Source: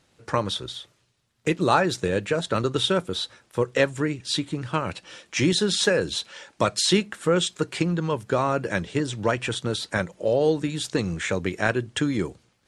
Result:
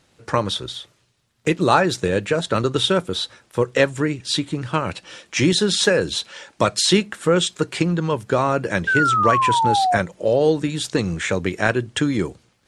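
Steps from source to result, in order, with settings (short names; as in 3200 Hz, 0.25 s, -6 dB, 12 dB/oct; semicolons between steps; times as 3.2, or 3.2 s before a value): painted sound fall, 8.87–9.97, 690–1600 Hz -22 dBFS; gain +4 dB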